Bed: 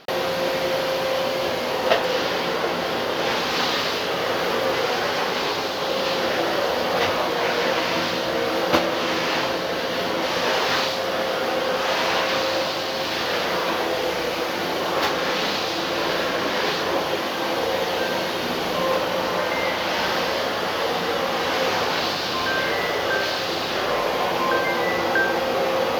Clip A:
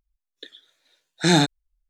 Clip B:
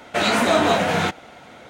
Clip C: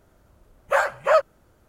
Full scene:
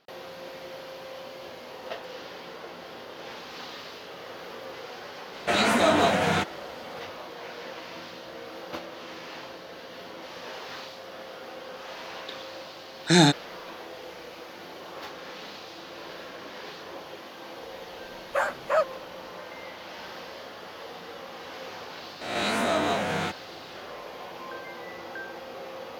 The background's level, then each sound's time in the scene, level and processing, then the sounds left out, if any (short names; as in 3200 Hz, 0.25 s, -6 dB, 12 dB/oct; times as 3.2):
bed -18 dB
5.33 add B -3.5 dB
11.86 add A -0.5 dB
17.63 add C -6 dB
22.21 add B -10.5 dB + spectral swells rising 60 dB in 0.84 s